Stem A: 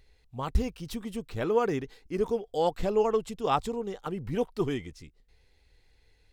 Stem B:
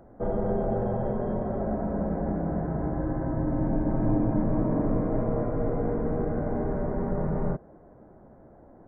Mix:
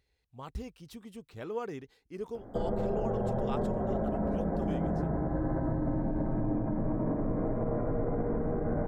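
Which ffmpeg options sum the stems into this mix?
ffmpeg -i stem1.wav -i stem2.wav -filter_complex "[0:a]highpass=54,volume=-10.5dB[link_01];[1:a]acompressor=threshold=-27dB:ratio=6,adelay=2350,volume=3dB[link_02];[link_01][link_02]amix=inputs=2:normalize=0,alimiter=limit=-22.5dB:level=0:latency=1:release=72" out.wav

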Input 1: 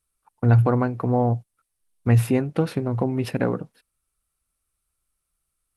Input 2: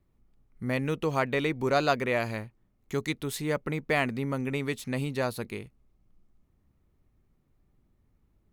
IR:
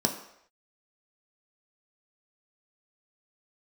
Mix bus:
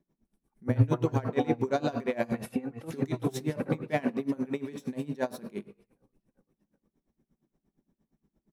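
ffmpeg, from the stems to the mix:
-filter_complex "[0:a]asplit=2[link_01][link_02];[link_02]adelay=2.3,afreqshift=0.95[link_03];[link_01][link_03]amix=inputs=2:normalize=1,adelay=250,volume=-3dB,asplit=2[link_04][link_05];[link_05]volume=-8dB[link_06];[1:a]asoftclip=type=tanh:threshold=-13.5dB,volume=-6.5dB,asplit=2[link_07][link_08];[link_08]volume=-5.5dB[link_09];[2:a]atrim=start_sample=2205[link_10];[link_09][link_10]afir=irnorm=-1:irlink=0[link_11];[link_06]aecho=0:1:384|768|1152|1536|1920|2304|2688|3072:1|0.53|0.281|0.149|0.0789|0.0418|0.0222|0.0117[link_12];[link_04][link_07][link_11][link_12]amix=inputs=4:normalize=0,aeval=exprs='val(0)*pow(10,-22*(0.5-0.5*cos(2*PI*8.6*n/s))/20)':channel_layout=same"

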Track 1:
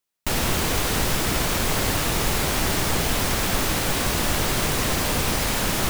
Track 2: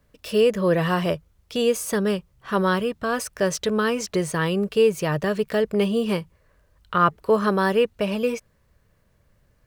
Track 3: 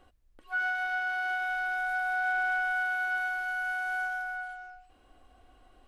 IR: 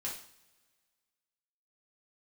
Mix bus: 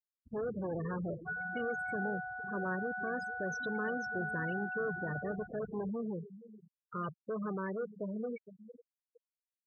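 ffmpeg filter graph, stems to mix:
-filter_complex "[0:a]bandreject=frequency=2000:width=7.5,volume=-19dB[link_01];[1:a]lowshelf=frequency=260:gain=5,asoftclip=type=tanh:threshold=-23.5dB,volume=-10.5dB,asplit=2[link_02][link_03];[link_03]volume=-13dB[link_04];[2:a]adelay=750,volume=-3.5dB,asplit=2[link_05][link_06];[link_06]volume=-19dB[link_07];[link_01][link_05]amix=inputs=2:normalize=0,acompressor=threshold=-36dB:ratio=8,volume=0dB[link_08];[link_04][link_07]amix=inputs=2:normalize=0,aecho=0:1:458|916|1374|1832|2290|2748|3206:1|0.49|0.24|0.118|0.0576|0.0282|0.0138[link_09];[link_02][link_08][link_09]amix=inputs=3:normalize=0,afftfilt=real='re*gte(hypot(re,im),0.0282)':imag='im*gte(hypot(re,im),0.0282)':win_size=1024:overlap=0.75,highpass=120,lowpass=4800"

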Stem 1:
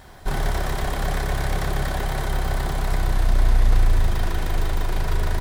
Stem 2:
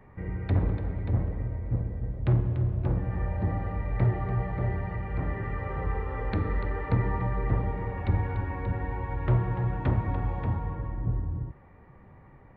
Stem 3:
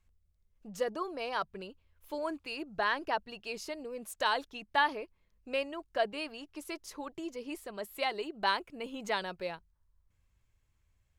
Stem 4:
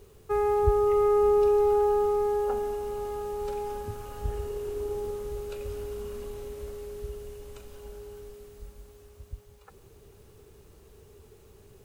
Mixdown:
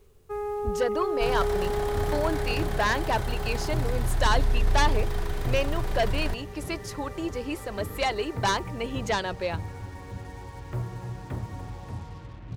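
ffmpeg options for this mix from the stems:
ffmpeg -i stem1.wav -i stem2.wav -i stem3.wav -i stem4.wav -filter_complex "[0:a]adelay=950,volume=-7dB[link_01];[1:a]highpass=55,acrusher=bits=6:mix=0:aa=0.5,adelay=1450,volume=-7.5dB[link_02];[2:a]highshelf=frequency=9100:gain=-5,aeval=exprs='0.178*sin(PI/2*2.82*val(0)/0.178)':channel_layout=same,volume=-4.5dB[link_03];[3:a]volume=-6.5dB[link_04];[link_01][link_02][link_03][link_04]amix=inputs=4:normalize=0" out.wav

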